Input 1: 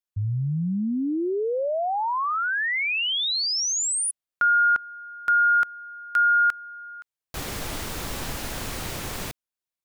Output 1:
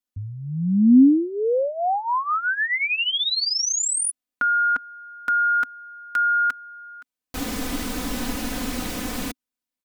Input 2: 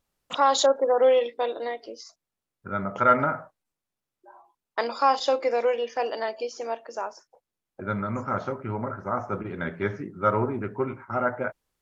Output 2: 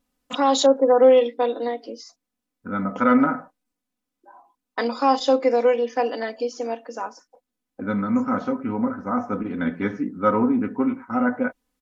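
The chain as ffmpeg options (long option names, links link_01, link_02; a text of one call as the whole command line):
ffmpeg -i in.wav -af "equalizer=frequency=260:width_type=o:width=0.61:gain=10.5,aecho=1:1:4:0.68" out.wav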